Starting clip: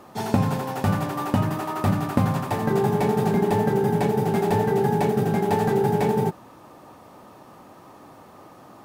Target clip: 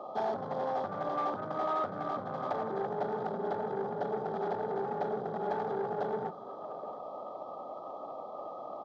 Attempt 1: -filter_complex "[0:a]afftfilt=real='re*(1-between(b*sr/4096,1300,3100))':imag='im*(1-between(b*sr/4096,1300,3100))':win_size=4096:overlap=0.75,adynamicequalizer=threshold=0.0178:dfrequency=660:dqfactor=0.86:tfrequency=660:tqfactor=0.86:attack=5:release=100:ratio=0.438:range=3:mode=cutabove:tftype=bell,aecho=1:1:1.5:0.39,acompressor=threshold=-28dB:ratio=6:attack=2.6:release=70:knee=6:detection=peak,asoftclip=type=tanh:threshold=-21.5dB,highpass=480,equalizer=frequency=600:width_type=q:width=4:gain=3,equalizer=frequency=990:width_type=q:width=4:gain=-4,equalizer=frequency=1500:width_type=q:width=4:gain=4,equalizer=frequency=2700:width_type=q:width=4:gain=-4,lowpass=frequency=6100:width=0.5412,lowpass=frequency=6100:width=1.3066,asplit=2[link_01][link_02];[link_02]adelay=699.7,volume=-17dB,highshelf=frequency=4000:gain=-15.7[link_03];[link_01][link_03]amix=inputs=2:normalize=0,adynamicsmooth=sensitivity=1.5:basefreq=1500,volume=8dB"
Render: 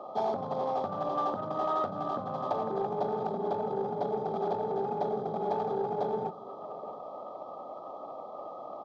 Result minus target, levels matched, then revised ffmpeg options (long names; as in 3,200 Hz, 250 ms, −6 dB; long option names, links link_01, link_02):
soft clipping: distortion −12 dB
-filter_complex "[0:a]afftfilt=real='re*(1-between(b*sr/4096,1300,3100))':imag='im*(1-between(b*sr/4096,1300,3100))':win_size=4096:overlap=0.75,adynamicequalizer=threshold=0.0178:dfrequency=660:dqfactor=0.86:tfrequency=660:tqfactor=0.86:attack=5:release=100:ratio=0.438:range=3:mode=cutabove:tftype=bell,aecho=1:1:1.5:0.39,acompressor=threshold=-28dB:ratio=6:attack=2.6:release=70:knee=6:detection=peak,asoftclip=type=tanh:threshold=-30dB,highpass=480,equalizer=frequency=600:width_type=q:width=4:gain=3,equalizer=frequency=990:width_type=q:width=4:gain=-4,equalizer=frequency=1500:width_type=q:width=4:gain=4,equalizer=frequency=2700:width_type=q:width=4:gain=-4,lowpass=frequency=6100:width=0.5412,lowpass=frequency=6100:width=1.3066,asplit=2[link_01][link_02];[link_02]adelay=699.7,volume=-17dB,highshelf=frequency=4000:gain=-15.7[link_03];[link_01][link_03]amix=inputs=2:normalize=0,adynamicsmooth=sensitivity=1.5:basefreq=1500,volume=8dB"